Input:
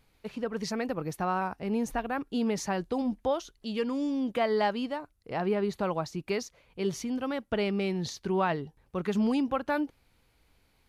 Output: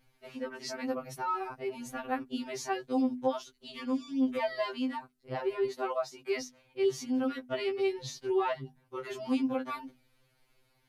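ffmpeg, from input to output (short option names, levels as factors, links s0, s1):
-filter_complex "[0:a]asettb=1/sr,asplit=3[s0][s1][s2];[s0]atrim=end=5.664[s3];[s1]atrim=start=5.66:end=6.41,asetpts=PTS-STARTPTS,afade=t=in:d=0.004:c=qsin,afade=t=out:st=0.746:d=0.004:c=qsin,highpass=f=210:w=0.5412,highpass=f=210:w=1.3066[s4];[s2]atrim=start=6.406[s5];[s3][s4]acrossfade=d=0.004:c1=hsin:c2=qsin[s6];[s6][s5]acrossfade=d=0.004:c1=qsin:c2=hsin,bandreject=f=50:t=h:w=6,bandreject=f=100:t=h:w=6,bandreject=f=150:t=h:w=6,bandreject=f=200:t=h:w=6,bandreject=f=250:t=h:w=6,bandreject=f=300:t=h:w=6,afftfilt=real='re*2.45*eq(mod(b,6),0)':imag='im*2.45*eq(mod(b,6),0)':win_size=2048:overlap=0.75"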